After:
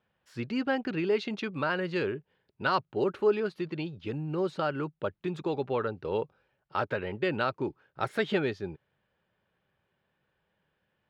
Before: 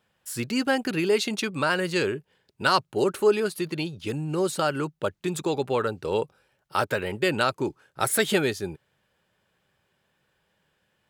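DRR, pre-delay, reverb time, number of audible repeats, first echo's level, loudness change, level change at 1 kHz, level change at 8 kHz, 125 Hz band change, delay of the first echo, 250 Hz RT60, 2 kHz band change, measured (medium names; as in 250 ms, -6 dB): no reverb, no reverb, no reverb, no echo, no echo, -5.5 dB, -5.0 dB, under -25 dB, -4.0 dB, no echo, no reverb, -6.0 dB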